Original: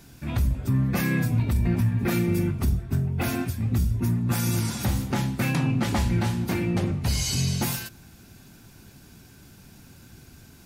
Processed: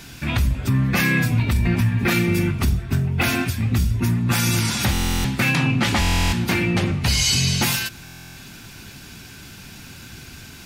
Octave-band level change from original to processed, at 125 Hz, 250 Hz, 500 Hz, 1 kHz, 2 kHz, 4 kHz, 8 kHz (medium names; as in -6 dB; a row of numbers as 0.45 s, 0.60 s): +3.5 dB, +3.5 dB, +3.5 dB, +6.5 dB, +11.5 dB, +11.5 dB, +8.0 dB